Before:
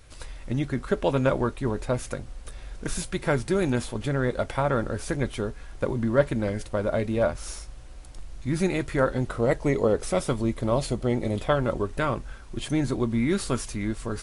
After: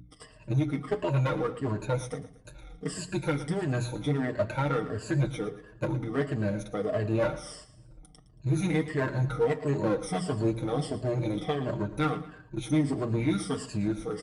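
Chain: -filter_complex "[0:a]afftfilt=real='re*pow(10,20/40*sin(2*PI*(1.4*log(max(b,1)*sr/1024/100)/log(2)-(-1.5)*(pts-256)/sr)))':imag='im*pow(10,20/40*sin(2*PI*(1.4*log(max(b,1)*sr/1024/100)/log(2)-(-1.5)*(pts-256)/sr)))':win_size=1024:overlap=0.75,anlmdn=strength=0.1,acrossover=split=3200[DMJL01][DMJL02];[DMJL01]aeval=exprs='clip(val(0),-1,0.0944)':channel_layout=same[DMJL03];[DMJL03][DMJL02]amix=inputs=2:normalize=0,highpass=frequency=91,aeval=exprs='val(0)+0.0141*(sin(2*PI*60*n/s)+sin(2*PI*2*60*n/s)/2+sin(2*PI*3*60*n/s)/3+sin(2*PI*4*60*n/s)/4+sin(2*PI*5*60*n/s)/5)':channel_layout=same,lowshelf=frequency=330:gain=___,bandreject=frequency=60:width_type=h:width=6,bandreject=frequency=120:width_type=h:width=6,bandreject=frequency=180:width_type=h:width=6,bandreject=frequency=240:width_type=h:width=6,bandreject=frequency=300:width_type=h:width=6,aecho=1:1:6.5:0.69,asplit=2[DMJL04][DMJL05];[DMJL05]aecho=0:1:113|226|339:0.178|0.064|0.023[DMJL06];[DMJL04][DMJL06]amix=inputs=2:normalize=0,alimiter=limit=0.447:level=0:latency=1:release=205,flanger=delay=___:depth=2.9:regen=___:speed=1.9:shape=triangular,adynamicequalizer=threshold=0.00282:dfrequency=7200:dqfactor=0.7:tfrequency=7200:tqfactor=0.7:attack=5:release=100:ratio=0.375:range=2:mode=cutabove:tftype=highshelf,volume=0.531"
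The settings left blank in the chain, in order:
8.5, 8.6, -81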